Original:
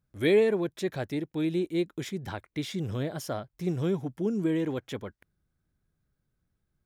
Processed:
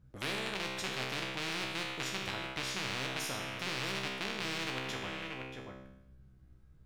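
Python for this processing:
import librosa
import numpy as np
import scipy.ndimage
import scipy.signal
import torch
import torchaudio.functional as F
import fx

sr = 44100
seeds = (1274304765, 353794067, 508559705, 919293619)

y = fx.rattle_buzz(x, sr, strikes_db=-35.0, level_db=-18.0)
y = fx.lowpass(y, sr, hz=3400.0, slope=6)
y = fx.low_shelf(y, sr, hz=260.0, db=10.0)
y = fx.comb_fb(y, sr, f0_hz=65.0, decay_s=0.81, harmonics='all', damping=0.0, mix_pct=90)
y = y + 10.0 ** (-15.0 / 20.0) * np.pad(y, (int(634 * sr / 1000.0), 0))[:len(y)]
y = fx.spectral_comp(y, sr, ratio=4.0)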